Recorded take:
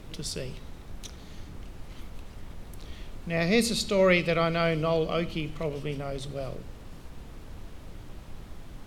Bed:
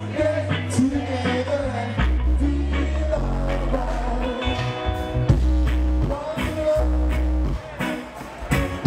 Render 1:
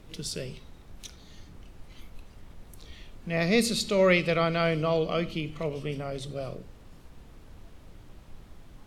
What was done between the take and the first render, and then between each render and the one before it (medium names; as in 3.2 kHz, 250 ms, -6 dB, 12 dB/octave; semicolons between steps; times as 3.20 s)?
noise print and reduce 6 dB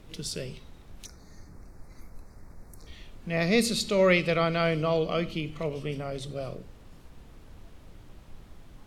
1.05–2.87 s: Butterworth band-stop 3.1 kHz, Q 1.2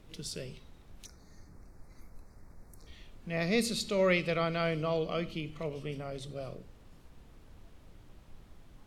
trim -5.5 dB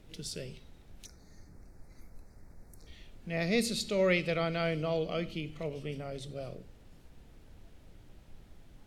peaking EQ 1.1 kHz -6.5 dB 0.41 oct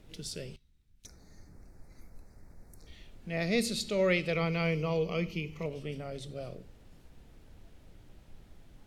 0.56–1.05 s: amplifier tone stack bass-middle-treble 6-0-2; 4.33–5.66 s: rippled EQ curve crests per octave 0.8, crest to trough 10 dB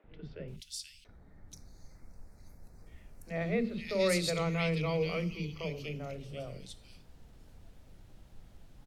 three bands offset in time mids, lows, highs 40/480 ms, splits 350/2300 Hz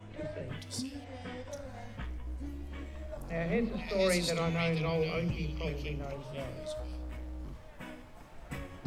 add bed -20.5 dB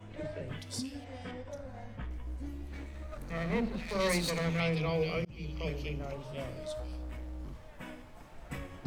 1.31–2.11 s: treble shelf 2.3 kHz -8.5 dB; 2.66–4.60 s: comb filter that takes the minimum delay 0.48 ms; 5.25–5.72 s: fade in equal-power